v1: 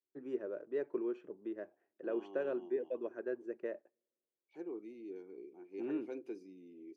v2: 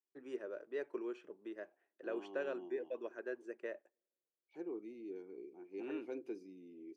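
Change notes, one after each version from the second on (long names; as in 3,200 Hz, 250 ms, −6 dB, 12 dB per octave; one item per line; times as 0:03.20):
first voice: add spectral tilt +3.5 dB per octave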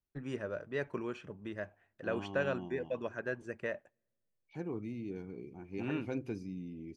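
master: remove four-pole ladder high-pass 310 Hz, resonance 55%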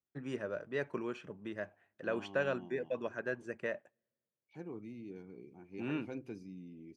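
second voice −5.5 dB
master: add high-pass filter 130 Hz 12 dB per octave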